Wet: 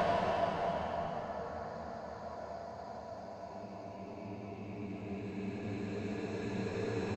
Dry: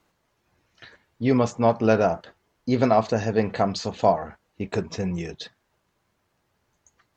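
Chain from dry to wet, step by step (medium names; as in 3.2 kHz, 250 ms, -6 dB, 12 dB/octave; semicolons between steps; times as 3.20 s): feedback delay 296 ms, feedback 45%, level -19 dB; Chebyshev shaper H 3 -21 dB, 4 -12 dB, 6 -9 dB, 8 -18 dB, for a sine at -5.5 dBFS; Paulstretch 15×, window 0.50 s, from 4.21 s; trim -4.5 dB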